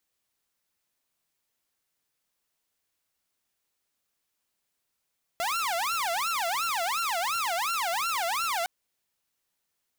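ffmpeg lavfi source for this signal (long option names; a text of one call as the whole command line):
ffmpeg -f lavfi -i "aevalsrc='0.0631*(2*mod((1024.5*t-355.5/(2*PI*2.8)*sin(2*PI*2.8*t)),1)-1)':duration=3.26:sample_rate=44100" out.wav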